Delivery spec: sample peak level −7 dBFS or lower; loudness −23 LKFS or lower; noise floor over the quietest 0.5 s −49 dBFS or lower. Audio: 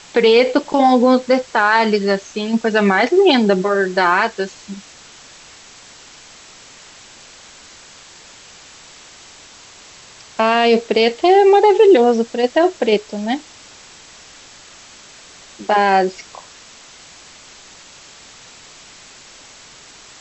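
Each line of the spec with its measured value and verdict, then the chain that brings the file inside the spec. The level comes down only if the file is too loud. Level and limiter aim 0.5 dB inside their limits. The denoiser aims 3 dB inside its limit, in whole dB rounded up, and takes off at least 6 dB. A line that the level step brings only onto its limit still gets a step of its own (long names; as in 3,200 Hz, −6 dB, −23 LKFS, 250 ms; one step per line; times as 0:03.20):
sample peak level −3.0 dBFS: out of spec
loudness −14.5 LKFS: out of spec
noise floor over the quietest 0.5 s −42 dBFS: out of spec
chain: level −9 dB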